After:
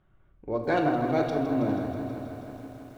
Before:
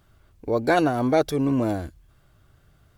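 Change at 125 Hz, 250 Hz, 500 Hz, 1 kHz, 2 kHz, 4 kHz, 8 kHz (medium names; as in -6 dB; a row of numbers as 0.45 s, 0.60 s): -4.0 dB, -3.5 dB, -4.5 dB, -3.5 dB, -5.0 dB, -7.5 dB, under -10 dB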